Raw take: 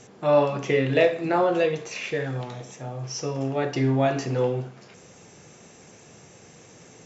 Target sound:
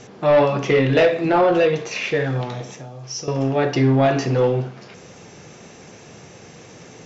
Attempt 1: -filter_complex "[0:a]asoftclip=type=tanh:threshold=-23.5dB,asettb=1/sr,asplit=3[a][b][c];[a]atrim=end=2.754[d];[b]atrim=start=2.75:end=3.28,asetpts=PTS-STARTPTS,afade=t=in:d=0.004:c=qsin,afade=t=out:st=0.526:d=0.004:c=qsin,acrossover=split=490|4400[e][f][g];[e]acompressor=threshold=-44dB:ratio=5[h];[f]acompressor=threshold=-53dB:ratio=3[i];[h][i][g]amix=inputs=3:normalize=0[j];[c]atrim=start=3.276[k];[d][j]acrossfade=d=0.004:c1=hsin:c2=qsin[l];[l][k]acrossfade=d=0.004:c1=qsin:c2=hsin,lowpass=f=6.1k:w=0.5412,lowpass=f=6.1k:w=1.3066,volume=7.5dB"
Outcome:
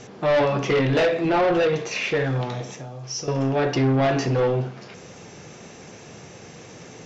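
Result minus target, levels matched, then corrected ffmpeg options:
soft clip: distortion +7 dB
-filter_complex "[0:a]asoftclip=type=tanh:threshold=-16dB,asettb=1/sr,asplit=3[a][b][c];[a]atrim=end=2.754[d];[b]atrim=start=2.75:end=3.28,asetpts=PTS-STARTPTS,afade=t=in:d=0.004:c=qsin,afade=t=out:st=0.526:d=0.004:c=qsin,acrossover=split=490|4400[e][f][g];[e]acompressor=threshold=-44dB:ratio=5[h];[f]acompressor=threshold=-53dB:ratio=3[i];[h][i][g]amix=inputs=3:normalize=0[j];[c]atrim=start=3.276[k];[d][j]acrossfade=d=0.004:c1=hsin:c2=qsin[l];[l][k]acrossfade=d=0.004:c1=qsin:c2=hsin,lowpass=f=6.1k:w=0.5412,lowpass=f=6.1k:w=1.3066,volume=7.5dB"

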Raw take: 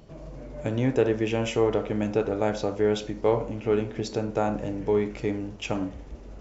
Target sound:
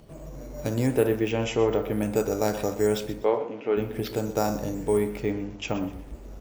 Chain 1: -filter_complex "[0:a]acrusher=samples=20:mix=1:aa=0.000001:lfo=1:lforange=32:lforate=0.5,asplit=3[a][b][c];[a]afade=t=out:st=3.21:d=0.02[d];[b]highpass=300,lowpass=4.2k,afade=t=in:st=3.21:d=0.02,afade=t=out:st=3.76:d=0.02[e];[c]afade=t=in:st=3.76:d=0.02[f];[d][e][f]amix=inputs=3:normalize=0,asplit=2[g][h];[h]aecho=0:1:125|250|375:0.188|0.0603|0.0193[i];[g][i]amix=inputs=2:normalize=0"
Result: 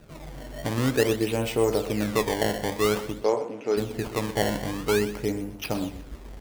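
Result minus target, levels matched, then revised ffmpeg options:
decimation with a swept rate: distortion +14 dB
-filter_complex "[0:a]acrusher=samples=4:mix=1:aa=0.000001:lfo=1:lforange=6.4:lforate=0.5,asplit=3[a][b][c];[a]afade=t=out:st=3.21:d=0.02[d];[b]highpass=300,lowpass=4.2k,afade=t=in:st=3.21:d=0.02,afade=t=out:st=3.76:d=0.02[e];[c]afade=t=in:st=3.76:d=0.02[f];[d][e][f]amix=inputs=3:normalize=0,asplit=2[g][h];[h]aecho=0:1:125|250|375:0.188|0.0603|0.0193[i];[g][i]amix=inputs=2:normalize=0"

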